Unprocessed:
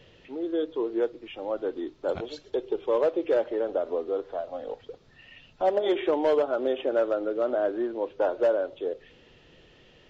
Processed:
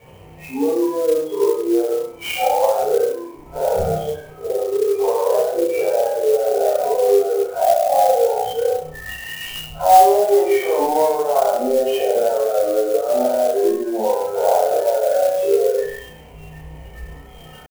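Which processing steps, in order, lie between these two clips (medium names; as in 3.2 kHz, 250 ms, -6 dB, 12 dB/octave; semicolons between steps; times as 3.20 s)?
jump at every zero crossing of -31 dBFS; spectral noise reduction 23 dB; high-pass 58 Hz 24 dB/octave; tilt EQ -2.5 dB/octave; peak limiter -26.5 dBFS, peak gain reduction 15 dB; tempo 0.57×; rippled Chebyshev low-pass 3.2 kHz, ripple 9 dB; flutter echo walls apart 5.5 m, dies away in 0.53 s; simulated room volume 300 m³, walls furnished, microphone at 5.7 m; sampling jitter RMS 0.03 ms; trim +7.5 dB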